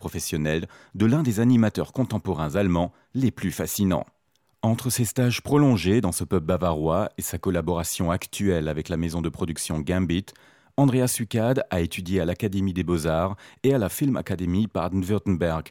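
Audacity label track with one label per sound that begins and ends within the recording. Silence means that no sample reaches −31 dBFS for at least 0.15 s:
0.950000	2.870000	sound
3.150000	4.030000	sound
4.630000	10.360000	sound
10.780000	13.340000	sound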